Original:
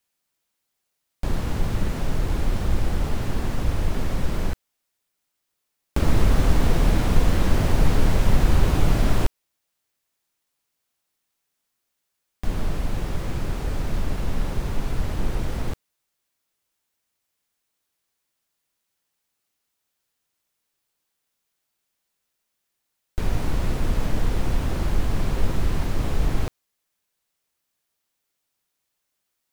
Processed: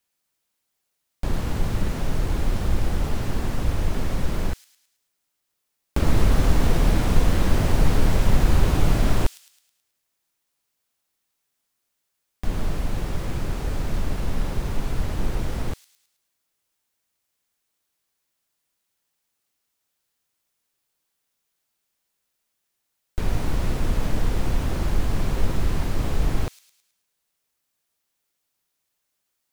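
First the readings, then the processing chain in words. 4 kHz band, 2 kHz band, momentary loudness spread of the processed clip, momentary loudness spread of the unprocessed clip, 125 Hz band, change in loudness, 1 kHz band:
+0.5 dB, 0.0 dB, 9 LU, 9 LU, 0.0 dB, 0.0 dB, 0.0 dB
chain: thin delay 0.107 s, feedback 46%, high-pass 4900 Hz, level -6 dB

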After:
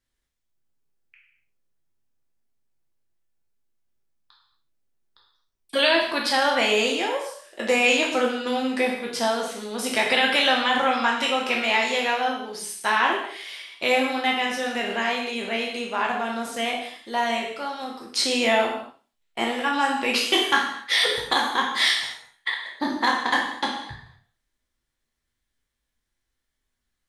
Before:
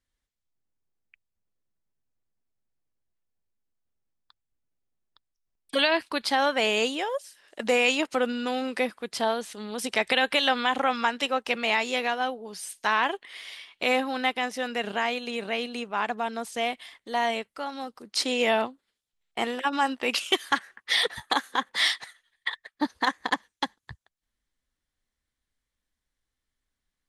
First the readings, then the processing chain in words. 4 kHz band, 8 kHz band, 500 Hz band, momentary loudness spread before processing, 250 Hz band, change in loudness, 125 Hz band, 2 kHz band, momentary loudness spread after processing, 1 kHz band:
+4.5 dB, +5.0 dB, +3.0 dB, 11 LU, +3.5 dB, +4.0 dB, n/a, +4.5 dB, 11 LU, +3.5 dB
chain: spectral trails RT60 0.35 s; non-linear reverb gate 0.27 s falling, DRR 0.5 dB

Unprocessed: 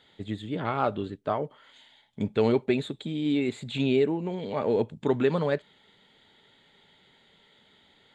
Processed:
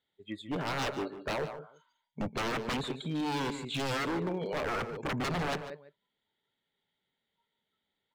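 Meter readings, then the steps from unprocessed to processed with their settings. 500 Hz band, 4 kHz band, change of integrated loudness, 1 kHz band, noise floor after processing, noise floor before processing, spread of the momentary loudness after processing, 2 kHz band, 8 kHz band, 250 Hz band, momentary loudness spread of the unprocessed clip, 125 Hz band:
-9.5 dB, +1.0 dB, -6.0 dB, -2.0 dB, -85 dBFS, -62 dBFS, 10 LU, +2.0 dB, n/a, -7.5 dB, 9 LU, -5.5 dB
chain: spectral noise reduction 24 dB; on a send: echo 0.191 s -18 dB; on the sum: wavefolder -27.5 dBFS; outdoor echo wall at 25 m, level -12 dB

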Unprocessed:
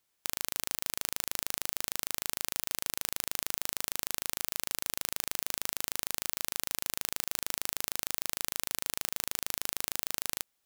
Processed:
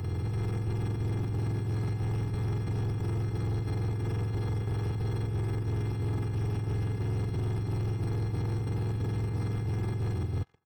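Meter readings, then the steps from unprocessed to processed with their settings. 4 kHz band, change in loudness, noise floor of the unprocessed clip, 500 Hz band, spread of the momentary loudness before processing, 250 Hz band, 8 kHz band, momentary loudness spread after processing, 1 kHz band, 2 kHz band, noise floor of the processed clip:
-14.5 dB, +1.5 dB, -78 dBFS, +9.5 dB, 0 LU, +15.5 dB, under -20 dB, 1 LU, 0.0 dB, -7.5 dB, -34 dBFS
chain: spectrum mirrored in octaves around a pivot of 600 Hz; narrowing echo 1.044 s, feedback 61%, band-pass 1500 Hz, level -17 dB; chopper 3 Hz, depth 60%, duty 75%; high shelf 12000 Hz -6 dB; negative-ratio compressor -36 dBFS, ratio -1; reverse echo 0.29 s -4 dB; sample leveller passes 3; bell 550 Hz -9.5 dB 0.21 oct; comb 2.4 ms, depth 46%; three-band squash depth 40%

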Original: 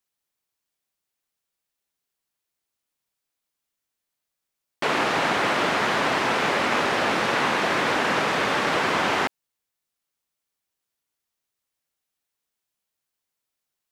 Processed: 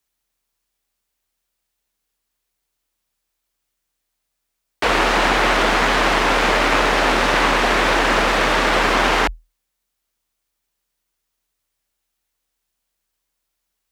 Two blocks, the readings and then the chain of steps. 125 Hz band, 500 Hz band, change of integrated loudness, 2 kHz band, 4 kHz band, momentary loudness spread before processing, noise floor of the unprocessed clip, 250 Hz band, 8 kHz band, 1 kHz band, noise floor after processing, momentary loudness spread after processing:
+6.0 dB, +6.0 dB, +6.0 dB, +6.0 dB, +6.5 dB, 2 LU, -84 dBFS, +5.5 dB, +7.0 dB, +6.0 dB, -77 dBFS, 2 LU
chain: half-wave gain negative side -7 dB; frequency shift +40 Hz; gain +8.5 dB

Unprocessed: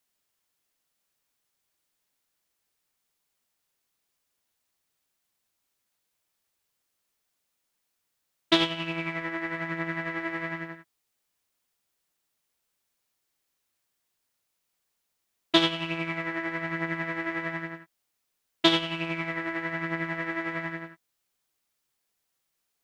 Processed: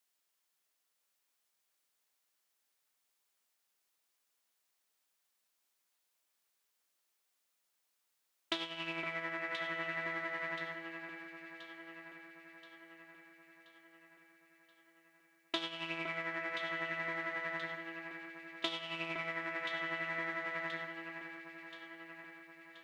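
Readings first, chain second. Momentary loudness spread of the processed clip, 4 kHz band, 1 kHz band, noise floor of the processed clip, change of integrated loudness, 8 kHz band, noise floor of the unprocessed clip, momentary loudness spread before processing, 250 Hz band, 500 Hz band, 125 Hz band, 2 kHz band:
16 LU, -13.0 dB, -8.0 dB, -82 dBFS, -11.0 dB, -11.5 dB, -80 dBFS, 13 LU, -16.0 dB, -9.5 dB, -16.5 dB, -6.0 dB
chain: HPF 490 Hz 6 dB/oct; compressor 6:1, threshold -32 dBFS, peak gain reduction 15 dB; echo with dull and thin repeats by turns 0.514 s, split 2100 Hz, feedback 73%, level -6 dB; gain -2.5 dB

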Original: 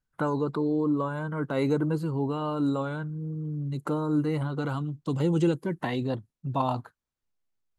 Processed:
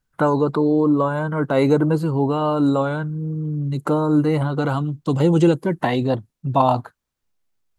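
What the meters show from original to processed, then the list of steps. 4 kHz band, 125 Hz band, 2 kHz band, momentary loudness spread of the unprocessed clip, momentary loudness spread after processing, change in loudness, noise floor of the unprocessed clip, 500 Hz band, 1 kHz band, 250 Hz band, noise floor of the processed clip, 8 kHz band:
+8.0 dB, +8.0 dB, +8.5 dB, 7 LU, 8 LU, +9.0 dB, -85 dBFS, +10.0 dB, +10.5 dB, +8.5 dB, -77 dBFS, n/a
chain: dynamic EQ 680 Hz, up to +5 dB, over -41 dBFS, Q 1.7; gain +8 dB

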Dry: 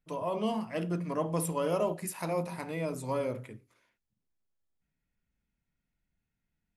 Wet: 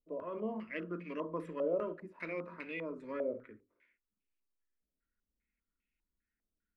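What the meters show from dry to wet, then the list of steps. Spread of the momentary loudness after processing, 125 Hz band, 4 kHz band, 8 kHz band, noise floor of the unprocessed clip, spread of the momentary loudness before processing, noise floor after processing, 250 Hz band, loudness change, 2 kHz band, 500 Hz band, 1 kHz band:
8 LU, -15.0 dB, under -10 dB, under -35 dB, -85 dBFS, 6 LU, under -85 dBFS, -7.0 dB, -6.5 dB, -0.5 dB, -5.0 dB, -10.5 dB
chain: fixed phaser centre 330 Hz, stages 4; stepped low-pass 5 Hz 670–2600 Hz; gain -5 dB

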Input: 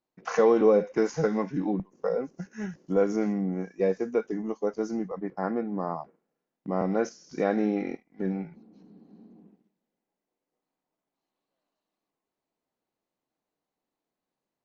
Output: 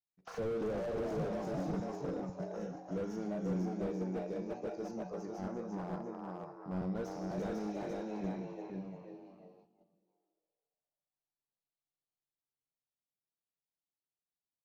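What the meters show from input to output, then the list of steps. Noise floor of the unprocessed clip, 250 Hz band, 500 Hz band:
under -85 dBFS, -9.5 dB, -12.5 dB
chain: high shelf 6000 Hz -8 dB; resonator 92 Hz, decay 0.94 s, harmonics all, mix 70%; echo 0.496 s -3.5 dB; vibrato 1.3 Hz 16 cents; frequency-shifting echo 0.345 s, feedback 35%, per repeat +130 Hz, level -5.5 dB; gate -57 dBFS, range -11 dB; graphic EQ 125/250/500/1000/2000/4000 Hz +6/-8/-5/-4/-11/+5 dB; slew limiter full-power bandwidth 6.8 Hz; gain +2.5 dB

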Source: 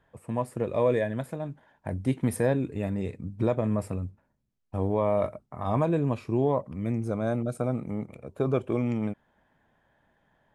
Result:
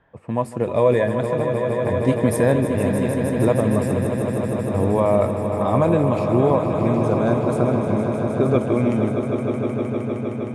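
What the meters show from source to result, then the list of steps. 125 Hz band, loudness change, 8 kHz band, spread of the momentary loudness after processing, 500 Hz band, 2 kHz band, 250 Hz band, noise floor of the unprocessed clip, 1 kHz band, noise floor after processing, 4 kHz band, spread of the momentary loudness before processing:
+8.5 dB, +8.5 dB, +9.5 dB, 6 LU, +10.0 dB, +10.0 dB, +9.5 dB, -73 dBFS, +10.0 dB, -28 dBFS, n/a, 10 LU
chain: low-pass opened by the level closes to 2800 Hz, open at -23.5 dBFS; low shelf 61 Hz -5.5 dB; swelling echo 0.155 s, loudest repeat 5, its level -9.5 dB; gain +7 dB

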